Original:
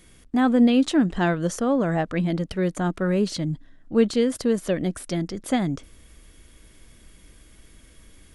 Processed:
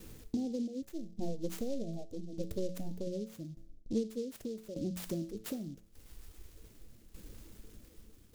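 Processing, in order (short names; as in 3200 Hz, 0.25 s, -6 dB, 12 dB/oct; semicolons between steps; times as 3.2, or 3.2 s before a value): 0.82–3.07 half-wave gain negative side -12 dB; reverb removal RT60 1.3 s; gate with hold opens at -46 dBFS; Chebyshev band-stop 480–6700 Hz, order 4; band shelf 1000 Hz +13 dB; notches 60/120/180 Hz; compressor 4:1, threshold -39 dBFS, peak gain reduction 21.5 dB; resonator 110 Hz, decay 0.58 s, harmonics all, mix 70%; tremolo saw down 0.84 Hz, depth 75%; noise-modulated delay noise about 4700 Hz, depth 0.032 ms; gain +14 dB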